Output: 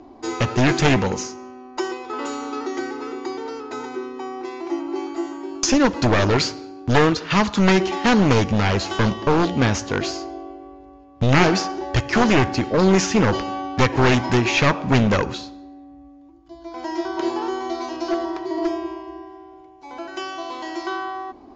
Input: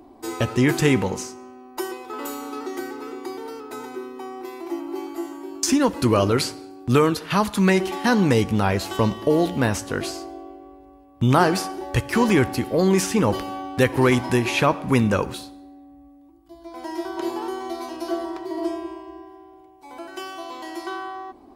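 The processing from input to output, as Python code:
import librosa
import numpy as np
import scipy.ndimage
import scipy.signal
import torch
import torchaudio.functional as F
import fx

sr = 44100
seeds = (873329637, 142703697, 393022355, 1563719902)

y = np.minimum(x, 2.0 * 10.0 ** (-17.5 / 20.0) - x)
y = scipy.signal.sosfilt(scipy.signal.cheby1(6, 1.0, 6900.0, 'lowpass', fs=sr, output='sos'), y)
y = F.gain(torch.from_numpy(y), 4.5).numpy()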